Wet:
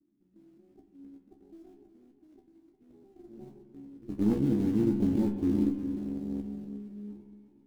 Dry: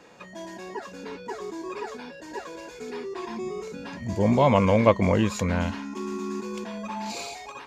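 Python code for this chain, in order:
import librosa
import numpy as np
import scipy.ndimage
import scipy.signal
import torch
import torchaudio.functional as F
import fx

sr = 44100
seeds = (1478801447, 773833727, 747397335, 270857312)

p1 = scipy.signal.sosfilt(scipy.signal.cheby1(5, 1.0, [380.0, 1900.0], 'bandstop', fs=sr, output='sos'), x)
p2 = fx.cheby_harmonics(p1, sr, harmonics=(2, 6, 7, 8), levels_db=(-7, -14, -19, -26), full_scale_db=-12.0)
p3 = fx.rider(p2, sr, range_db=10, speed_s=0.5)
p4 = p2 + F.gain(torch.from_numpy(p3), 1.0).numpy()
p5 = fx.formant_cascade(p4, sr, vowel='u')
p6 = fx.quant_float(p5, sr, bits=2)
p7 = fx.tilt_shelf(p6, sr, db=6.5, hz=1200.0)
p8 = fx.comb_fb(p7, sr, f0_hz=69.0, decay_s=0.18, harmonics='all', damping=0.0, mix_pct=100)
p9 = p8 + fx.echo_single(p8, sr, ms=360, db=-11.0, dry=0)
y = fx.rev_spring(p9, sr, rt60_s=1.5, pass_ms=(44,), chirp_ms=35, drr_db=8.5)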